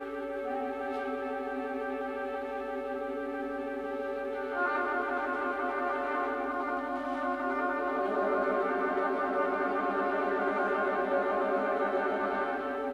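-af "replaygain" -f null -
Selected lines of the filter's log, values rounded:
track_gain = +14.0 dB
track_peak = 0.098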